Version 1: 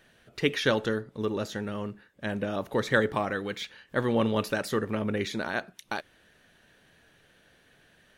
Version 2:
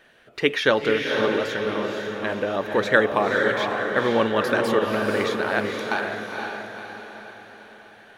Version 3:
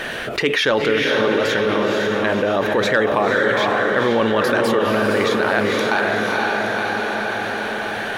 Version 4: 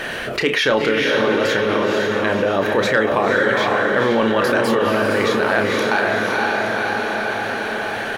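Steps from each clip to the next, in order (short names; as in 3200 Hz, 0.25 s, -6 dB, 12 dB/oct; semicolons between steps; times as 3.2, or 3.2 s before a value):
tone controls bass -11 dB, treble -8 dB; diffused feedback echo 0.501 s, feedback 49%, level -3 dB; gain +7 dB
in parallel at -9 dB: sine folder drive 4 dB, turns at -2.5 dBFS; on the sum: fast leveller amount 70%; gain -6 dB
notch 3600 Hz, Q 23; doubler 31 ms -8 dB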